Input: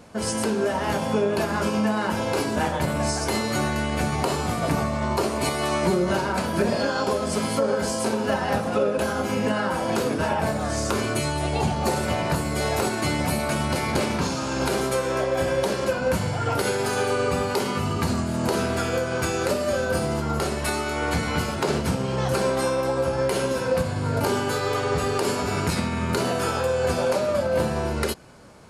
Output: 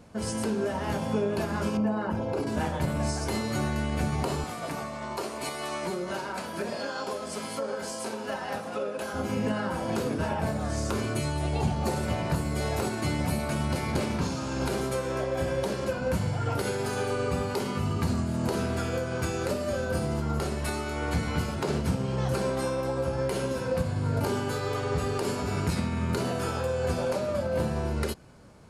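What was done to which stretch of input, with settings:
1.77–2.47 formant sharpening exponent 1.5
4.44–9.14 HPF 590 Hz 6 dB/oct
whole clip: low shelf 250 Hz +7.5 dB; gain -7.5 dB

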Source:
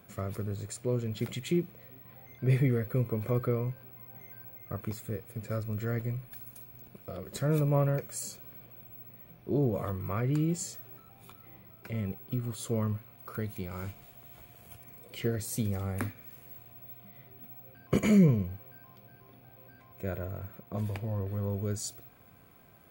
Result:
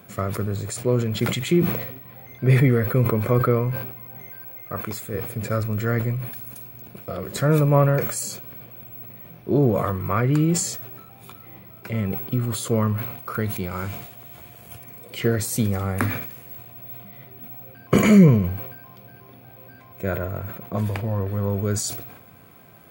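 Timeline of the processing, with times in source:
4.3–5.14 low shelf 270 Hz -8.5 dB
whole clip: HPF 74 Hz; dynamic EQ 1300 Hz, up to +5 dB, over -50 dBFS, Q 1.1; sustainer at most 62 dB/s; gain +9 dB

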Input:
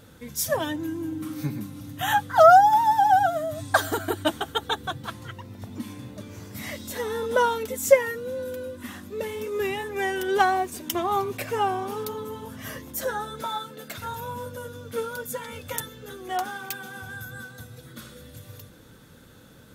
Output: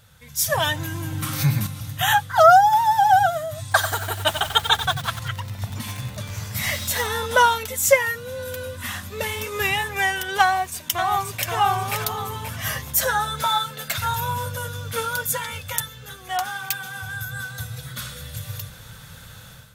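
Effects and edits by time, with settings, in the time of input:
0.57–1.67 fast leveller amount 50%
3.62–7.07 lo-fi delay 92 ms, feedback 55%, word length 6-bit, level -9.5 dB
10.45–11.51 echo throw 0.53 s, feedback 25%, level -3.5 dB
whole clip: EQ curve 140 Hz 0 dB, 300 Hz -21 dB, 670 Hz -4 dB, 2700 Hz +1 dB; AGC gain up to 12.5 dB; gain -1 dB

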